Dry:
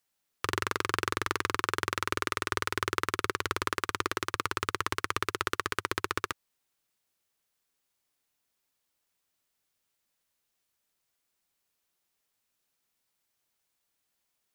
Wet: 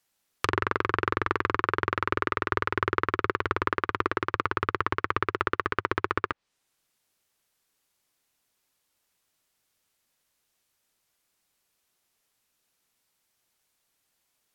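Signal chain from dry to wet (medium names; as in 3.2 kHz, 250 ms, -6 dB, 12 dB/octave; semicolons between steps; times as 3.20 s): low-pass that closes with the level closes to 1.9 kHz, closed at -31 dBFS; trim +5.5 dB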